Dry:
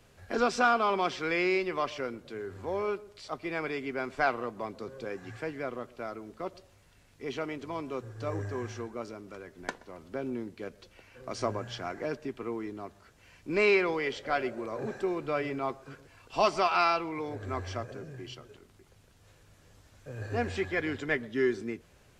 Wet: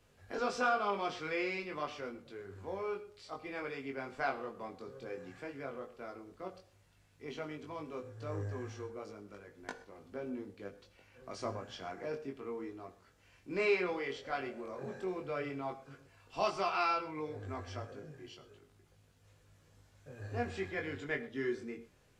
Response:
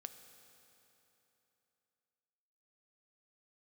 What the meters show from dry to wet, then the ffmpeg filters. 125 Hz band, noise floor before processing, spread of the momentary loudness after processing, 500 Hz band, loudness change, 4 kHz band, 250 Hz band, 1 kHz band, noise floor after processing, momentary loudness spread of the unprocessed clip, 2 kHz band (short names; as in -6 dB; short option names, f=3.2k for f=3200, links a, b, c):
-5.5 dB, -61 dBFS, 17 LU, -7.0 dB, -7.0 dB, -7.5 dB, -7.5 dB, -7.0 dB, -67 dBFS, 17 LU, -7.0 dB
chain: -filter_complex "[0:a]flanger=delay=19.5:depth=2.6:speed=0.11[a];[1:a]atrim=start_sample=2205,afade=t=out:st=0.18:d=0.01,atrim=end_sample=8379[b];[a][b]afir=irnorm=-1:irlink=0,volume=1dB"